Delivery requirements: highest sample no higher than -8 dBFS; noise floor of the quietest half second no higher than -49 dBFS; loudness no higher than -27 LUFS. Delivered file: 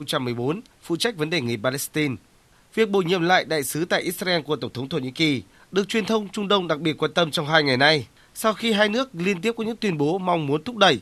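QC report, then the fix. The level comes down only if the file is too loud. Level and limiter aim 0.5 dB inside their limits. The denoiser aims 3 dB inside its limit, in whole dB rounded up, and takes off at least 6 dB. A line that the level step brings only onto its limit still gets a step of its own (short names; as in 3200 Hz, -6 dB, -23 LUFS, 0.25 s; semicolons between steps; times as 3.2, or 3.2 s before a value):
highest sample -3.5 dBFS: fail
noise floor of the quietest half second -56 dBFS: OK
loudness -22.5 LUFS: fail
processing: gain -5 dB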